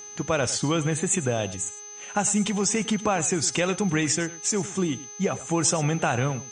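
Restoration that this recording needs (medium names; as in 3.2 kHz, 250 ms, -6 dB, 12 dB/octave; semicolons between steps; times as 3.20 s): de-hum 414.3 Hz, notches 15; band-stop 6.2 kHz, Q 30; inverse comb 105 ms -16.5 dB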